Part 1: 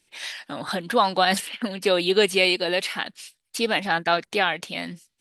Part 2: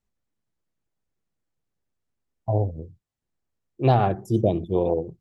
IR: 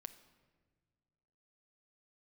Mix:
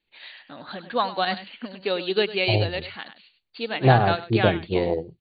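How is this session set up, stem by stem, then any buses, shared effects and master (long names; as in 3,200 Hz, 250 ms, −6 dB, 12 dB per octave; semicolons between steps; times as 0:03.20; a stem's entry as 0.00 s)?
−1.0 dB, 0.00 s, no send, echo send −11 dB, no processing
+2.5 dB, 0.00 s, no send, no echo send, no processing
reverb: not used
echo: single-tap delay 100 ms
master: linear-phase brick-wall low-pass 4,700 Hz; expander for the loud parts 1.5 to 1, over −27 dBFS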